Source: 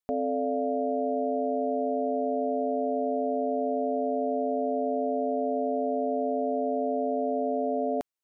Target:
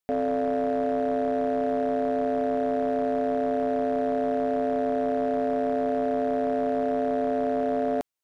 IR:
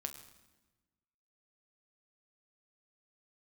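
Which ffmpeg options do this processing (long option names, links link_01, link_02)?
-af "asoftclip=type=hard:threshold=-23.5dB,volume=3dB"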